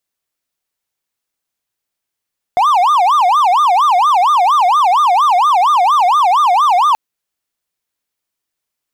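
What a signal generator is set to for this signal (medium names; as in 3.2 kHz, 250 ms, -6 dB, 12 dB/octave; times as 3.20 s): siren wail 704–1220 Hz 4.3 per s triangle -6 dBFS 4.38 s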